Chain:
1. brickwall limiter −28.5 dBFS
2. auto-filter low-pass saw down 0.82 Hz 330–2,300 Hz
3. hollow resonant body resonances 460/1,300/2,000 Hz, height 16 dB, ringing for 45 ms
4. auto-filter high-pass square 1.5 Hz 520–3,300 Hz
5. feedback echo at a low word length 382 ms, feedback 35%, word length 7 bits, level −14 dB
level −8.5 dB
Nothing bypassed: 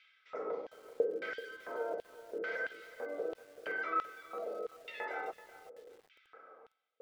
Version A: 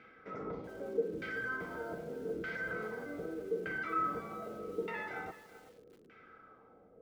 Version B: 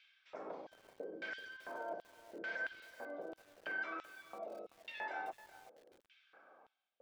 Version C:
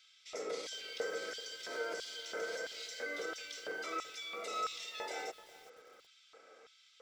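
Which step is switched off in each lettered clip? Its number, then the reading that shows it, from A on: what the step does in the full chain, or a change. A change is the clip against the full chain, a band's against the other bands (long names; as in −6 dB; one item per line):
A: 4, 250 Hz band +8.0 dB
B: 3, 500 Hz band −7.0 dB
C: 2, 4 kHz band +16.5 dB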